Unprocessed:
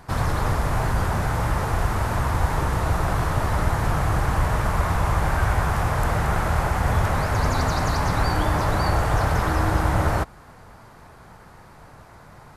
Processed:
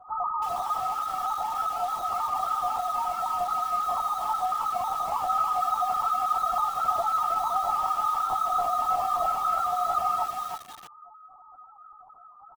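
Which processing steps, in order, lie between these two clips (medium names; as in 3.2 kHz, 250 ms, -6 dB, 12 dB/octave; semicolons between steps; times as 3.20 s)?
comb filter that takes the minimum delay 2.4 ms; high-pass 850 Hz 24 dB/octave; comb 3.1 ms, depth 100%; formant shift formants -3 st; loudest bins only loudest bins 2; distance through air 250 m; feedback delay 201 ms, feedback 27%, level -21 dB; LPC vocoder at 8 kHz whisper; bit-crushed delay 320 ms, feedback 35%, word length 8-bit, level -4.5 dB; trim +9 dB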